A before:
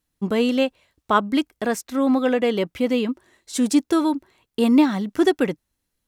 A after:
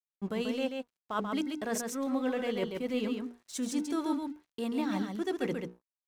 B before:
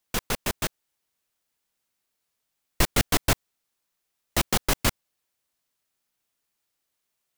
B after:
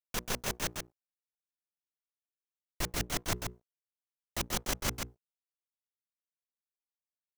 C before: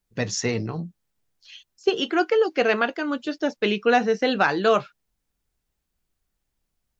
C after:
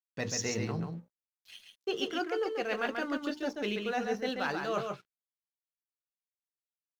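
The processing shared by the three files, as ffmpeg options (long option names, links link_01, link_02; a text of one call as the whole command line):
ffmpeg -i in.wav -filter_complex "[0:a]agate=range=-33dB:threshold=-52dB:ratio=3:detection=peak,bandreject=frequency=60:width_type=h:width=6,bandreject=frequency=120:width_type=h:width=6,bandreject=frequency=180:width_type=h:width=6,bandreject=frequency=240:width_type=h:width=6,bandreject=frequency=300:width_type=h:width=6,bandreject=frequency=360:width_type=h:width=6,bandreject=frequency=420:width_type=h:width=6,bandreject=frequency=480:width_type=h:width=6,adynamicequalizer=threshold=0.00398:dfrequency=6100:dqfactor=4.2:tfrequency=6100:tqfactor=4.2:attack=5:release=100:ratio=0.375:range=2.5:mode=boostabove:tftype=bell,areverse,acompressor=threshold=-26dB:ratio=8,areverse,aeval=exprs='sgn(val(0))*max(abs(val(0))-0.00282,0)':channel_layout=same,asplit=2[link_01][link_02];[link_02]aecho=0:1:136:0.562[link_03];[link_01][link_03]amix=inputs=2:normalize=0,volume=-3.5dB" out.wav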